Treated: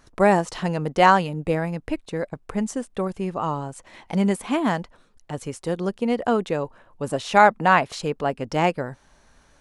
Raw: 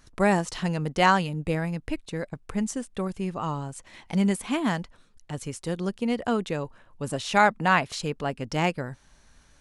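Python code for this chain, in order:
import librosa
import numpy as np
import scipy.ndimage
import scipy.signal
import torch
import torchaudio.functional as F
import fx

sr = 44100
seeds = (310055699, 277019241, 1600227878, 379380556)

y = fx.peak_eq(x, sr, hz=630.0, db=7.5, octaves=2.7)
y = y * librosa.db_to_amplitude(-1.0)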